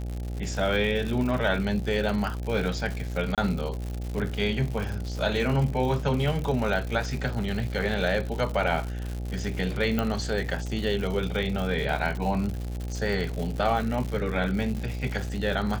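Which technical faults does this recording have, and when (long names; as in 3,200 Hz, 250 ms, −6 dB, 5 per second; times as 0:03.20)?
mains buzz 60 Hz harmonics 14 −32 dBFS
surface crackle 160 per second −31 dBFS
0:03.35–0:03.38: drop-out 27 ms
0:09.99: click −13 dBFS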